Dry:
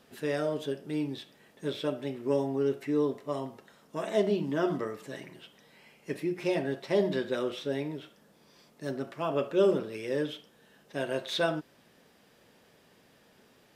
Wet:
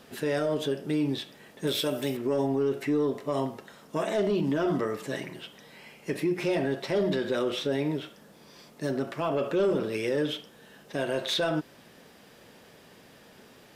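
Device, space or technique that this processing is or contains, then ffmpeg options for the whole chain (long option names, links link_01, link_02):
soft clipper into limiter: -filter_complex "[0:a]asettb=1/sr,asplit=3[link_01][link_02][link_03];[link_01]atrim=end=1.674[link_04];[link_02]atrim=start=1.67:end=2.17,asetpts=PTS-STARTPTS,afade=type=in:duration=0.004:curve=qsin,afade=type=out:start_time=0.496:duration=0.004:curve=qsin,aemphasis=mode=production:type=75fm[link_05];[link_03]atrim=start=2.166[link_06];[link_04][link_05]acrossfade=duration=0.004:curve1=hsin:curve2=qsin[link_07];[link_07][link_06]acrossfade=duration=0.004:curve1=qsin:curve2=hsin,asoftclip=type=tanh:threshold=-19.5dB,alimiter=level_in=3.5dB:limit=-24dB:level=0:latency=1:release=71,volume=-3.5dB,volume=8dB"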